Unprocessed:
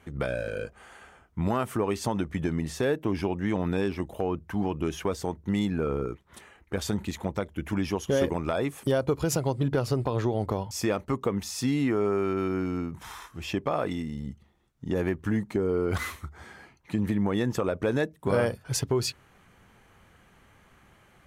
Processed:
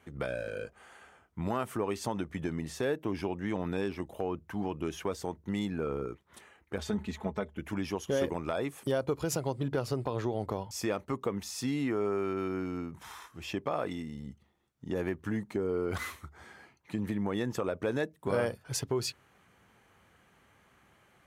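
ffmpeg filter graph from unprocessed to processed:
ffmpeg -i in.wav -filter_complex "[0:a]asettb=1/sr,asplit=3[link_01][link_02][link_03];[link_01]atrim=end=6.784[link_04];[link_02]atrim=start=6.78:end=7.59,asetpts=PTS-STARTPTS,afade=type=in:duration=0.004:curve=qsin,afade=type=out:start_time=0.806:duration=0.004:curve=qsin,lowpass=frequency=3200:poles=1,equalizer=frequency=79:width=5.2:gain=12.5,aecho=1:1:4.7:0.69,atrim=end_sample=35721[link_05];[link_03]atrim=start=7.586[link_06];[link_04][link_05]acrossfade=duration=0.004:curve1=hsin:curve2=qsin[link_07];[link_07][link_06]acrossfade=duration=0.004:curve1=qsin:curve2=hsin,highpass=61,bass=frequency=250:gain=-3,treble=frequency=4000:gain=0,volume=-4.5dB" out.wav

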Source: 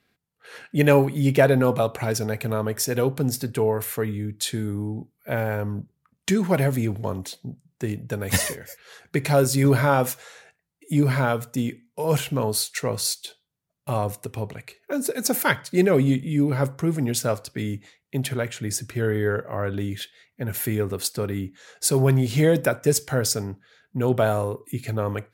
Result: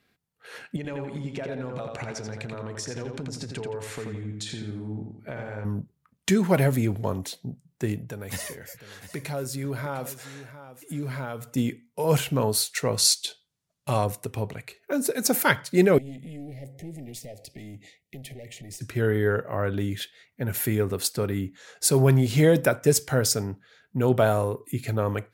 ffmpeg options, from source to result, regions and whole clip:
ffmpeg -i in.wav -filter_complex "[0:a]asettb=1/sr,asplit=3[link_01][link_02][link_03];[link_01]atrim=end=0.764[link_04];[link_02]atrim=start=0.76:end=5.65,asetpts=PTS-STARTPTS,afade=type=in:duration=0.004:curve=qsin,afade=type=out:start_time=4.886:duration=0.004:curve=qsin,lowpass=frequency=7700:width=0.5412,lowpass=frequency=7700:width=1.3066,acompressor=threshold=-31dB:ratio=8:attack=3.2:release=140:knee=1:detection=peak,asplit=2[link_05][link_06];[link_06]adelay=85,lowpass=frequency=4900:poles=1,volume=-4dB,asplit=2[link_07][link_08];[link_08]adelay=85,lowpass=frequency=4900:poles=1,volume=0.44,asplit=2[link_09][link_10];[link_10]adelay=85,lowpass=frequency=4900:poles=1,volume=0.44,asplit=2[link_11][link_12];[link_12]adelay=85,lowpass=frequency=4900:poles=1,volume=0.44,asplit=2[link_13][link_14];[link_14]adelay=85,lowpass=frequency=4900:poles=1,volume=0.44,asplit=2[link_15][link_16];[link_16]adelay=85,lowpass=frequency=4900:poles=1,volume=0.44[link_17];[link_05][link_07][link_09][link_11][link_13][link_15][link_17]amix=inputs=7:normalize=0,atrim=end_sample=215649[link_18];[link_03]atrim=start=5.646[link_19];[link_04][link_18]acrossfade=duration=0.004:curve1=hsin:curve2=qsin[link_20];[link_20][link_19]acrossfade=duration=0.004:curve1=qsin:curve2=hsin,asettb=1/sr,asplit=3[link_21][link_22][link_23];[link_21]atrim=end=8.044[link_24];[link_22]atrim=start=8.04:end=11.56,asetpts=PTS-STARTPTS,afade=type=in:duration=0.004:curve=qsin,afade=type=out:start_time=3.516:duration=0.004:curve=qsin,acompressor=threshold=-38dB:ratio=2:attack=3.2:release=140:knee=1:detection=peak,aecho=1:1:704:0.211,atrim=end_sample=155232[link_25];[link_23]atrim=start=11.556[link_26];[link_24][link_25]acrossfade=duration=0.004:curve1=hsin:curve2=qsin[link_27];[link_27][link_26]acrossfade=duration=0.004:curve1=qsin:curve2=hsin,asettb=1/sr,asplit=3[link_28][link_29][link_30];[link_28]atrim=end=12.984[link_31];[link_29]atrim=start=12.98:end=14.06,asetpts=PTS-STARTPTS,afade=type=in:duration=0.004:curve=qsin,afade=type=out:start_time=1.076:duration=0.004:curve=qsin,lowpass=6200,aemphasis=mode=production:type=75kf[link_32];[link_30]atrim=start=14.056[link_33];[link_31][link_32]acrossfade=duration=0.004:curve1=hsin:curve2=qsin[link_34];[link_34][link_33]acrossfade=duration=0.004:curve1=qsin:curve2=hsin,asettb=1/sr,asplit=3[link_35][link_36][link_37];[link_35]atrim=end=15.984[link_38];[link_36]atrim=start=15.98:end=18.81,asetpts=PTS-STARTPTS,afade=type=in:duration=0.004:curve=qsin,afade=type=out:start_time=2.826:duration=0.004:curve=qsin,acompressor=threshold=-39dB:ratio=3:attack=3.2:release=140:knee=1:detection=peak,aeval=exprs='clip(val(0),-1,0.0119)':channel_layout=same,asuperstop=centerf=1200:order=20:qfactor=1.2[link_39];[link_37]atrim=start=18.806[link_40];[link_38][link_39]acrossfade=duration=0.004:curve1=hsin:curve2=qsin[link_41];[link_41][link_40]acrossfade=duration=0.004:curve1=qsin:curve2=hsin" out.wav

